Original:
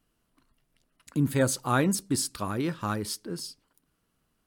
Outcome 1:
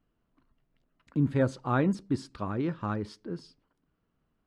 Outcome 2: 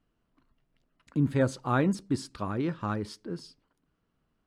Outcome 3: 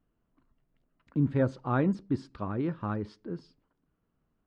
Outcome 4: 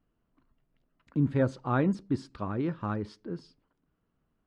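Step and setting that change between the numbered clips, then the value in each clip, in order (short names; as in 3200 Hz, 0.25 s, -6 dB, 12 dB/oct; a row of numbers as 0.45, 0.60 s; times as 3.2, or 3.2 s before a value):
tape spacing loss, at 10 kHz: 30, 20, 46, 38 dB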